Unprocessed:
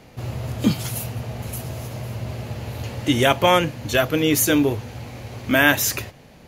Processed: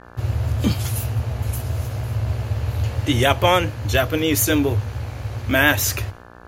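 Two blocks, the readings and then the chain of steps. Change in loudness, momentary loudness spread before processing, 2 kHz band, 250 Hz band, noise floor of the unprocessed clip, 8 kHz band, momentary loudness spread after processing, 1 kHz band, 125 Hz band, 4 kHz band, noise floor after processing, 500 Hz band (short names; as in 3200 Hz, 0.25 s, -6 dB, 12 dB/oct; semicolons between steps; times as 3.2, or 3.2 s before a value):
+0.5 dB, 15 LU, 0.0 dB, -1.5 dB, -47 dBFS, 0.0 dB, 9 LU, 0.0 dB, +6.0 dB, 0.0 dB, -43 dBFS, -0.5 dB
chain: expander -40 dBFS; resonant low shelf 120 Hz +7.5 dB, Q 3; buzz 60 Hz, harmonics 29, -44 dBFS -1 dB/oct; vibrato 7.1 Hz 36 cents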